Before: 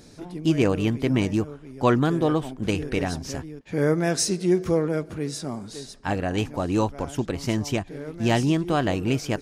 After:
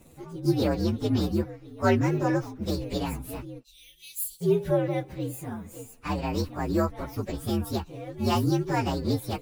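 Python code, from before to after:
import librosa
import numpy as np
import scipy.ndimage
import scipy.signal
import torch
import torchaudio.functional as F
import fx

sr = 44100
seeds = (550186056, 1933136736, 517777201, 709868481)

y = fx.partial_stretch(x, sr, pct=122)
y = fx.cheby2_bandstop(y, sr, low_hz=110.0, high_hz=1500.0, order=4, stop_db=50, at=(3.63, 4.4), fade=0.02)
y = y * 10.0 ** (-1.0 / 20.0)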